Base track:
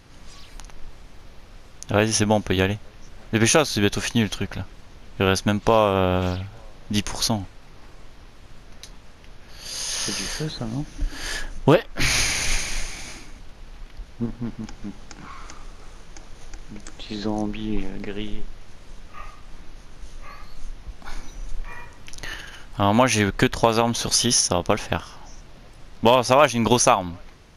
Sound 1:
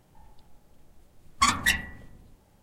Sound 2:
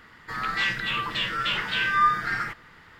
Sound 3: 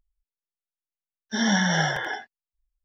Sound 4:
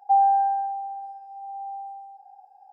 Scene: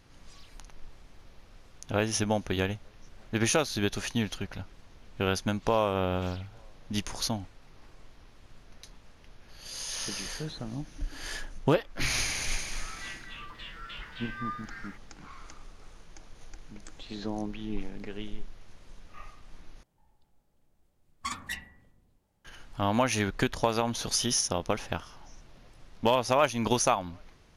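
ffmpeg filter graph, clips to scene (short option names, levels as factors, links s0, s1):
-filter_complex "[0:a]volume=0.376,asplit=2[s0][s1];[s0]atrim=end=19.834[s2];[1:a]atrim=end=2.62,asetpts=PTS-STARTPTS,volume=0.211[s3];[s1]atrim=start=22.446[s4];[2:a]atrim=end=2.99,asetpts=PTS-STARTPTS,volume=0.141,afade=t=in:d=0.004:c=hsin,afade=t=out:st=2.986:d=0.004:c=hsin,adelay=12440[s5];[s2][s3]acrossfade=d=0.004:c1=hsin:c2=hsin[s6];[s6][s4]acrossfade=d=0.004:c1=hsin:c2=hsin[s7];[s7][s5]amix=inputs=2:normalize=0"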